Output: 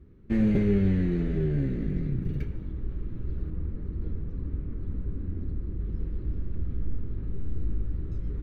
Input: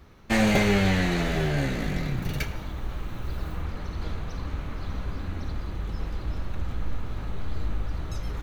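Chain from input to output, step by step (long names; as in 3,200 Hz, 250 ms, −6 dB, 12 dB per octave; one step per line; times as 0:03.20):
drawn EQ curve 390 Hz 0 dB, 730 Hz −22 dB, 1,800 Hz −16 dB, 6,900 Hz −29 dB
0:03.50–0:05.80: one half of a high-frequency compander decoder only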